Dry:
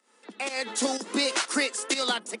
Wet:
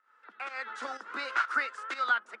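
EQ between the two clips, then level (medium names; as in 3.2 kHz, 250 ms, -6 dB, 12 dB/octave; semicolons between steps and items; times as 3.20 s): band-pass filter 1.4 kHz, Q 5.8; distance through air 51 m; +8.5 dB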